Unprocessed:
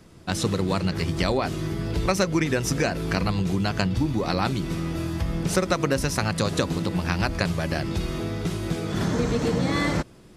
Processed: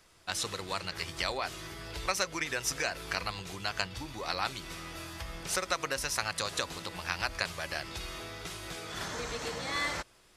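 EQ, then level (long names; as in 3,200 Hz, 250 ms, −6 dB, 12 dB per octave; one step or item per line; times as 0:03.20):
parametric band 210 Hz −15 dB 2.6 octaves
low-shelf EQ 310 Hz −8 dB
−2.5 dB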